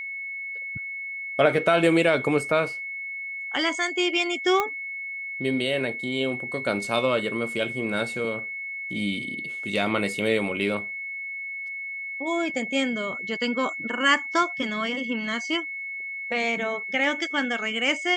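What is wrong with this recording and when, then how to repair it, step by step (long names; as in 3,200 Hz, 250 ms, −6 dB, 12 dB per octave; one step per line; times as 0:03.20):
whistle 2,200 Hz −31 dBFS
0:04.60: click −10 dBFS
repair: click removal
notch filter 2,200 Hz, Q 30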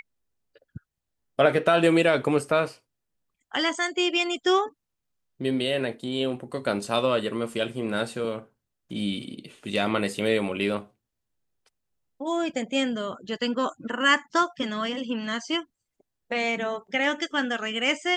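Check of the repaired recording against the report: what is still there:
none of them is left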